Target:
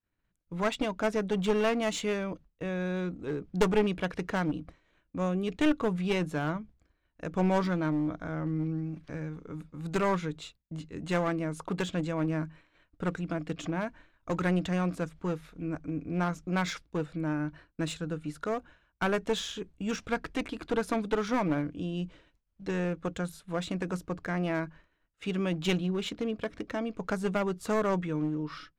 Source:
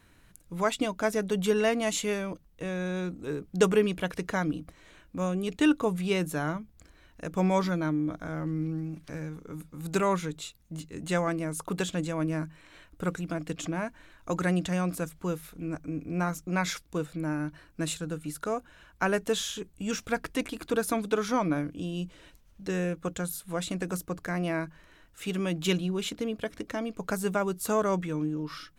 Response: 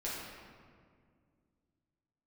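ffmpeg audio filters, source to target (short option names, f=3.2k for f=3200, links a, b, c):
-af "adynamicsmooth=sensitivity=2.5:basefreq=4.6k,agate=range=-33dB:threshold=-45dB:ratio=3:detection=peak,aeval=exprs='clip(val(0),-1,0.0422)':c=same"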